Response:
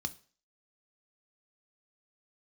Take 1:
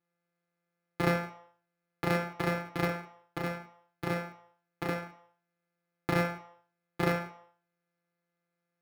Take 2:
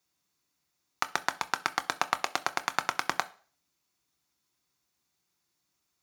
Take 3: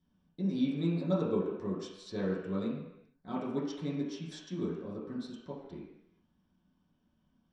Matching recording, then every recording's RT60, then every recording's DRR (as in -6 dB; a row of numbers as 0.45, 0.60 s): 2; 0.60 s, 0.45 s, not exponential; 2.0, 9.5, -9.5 dB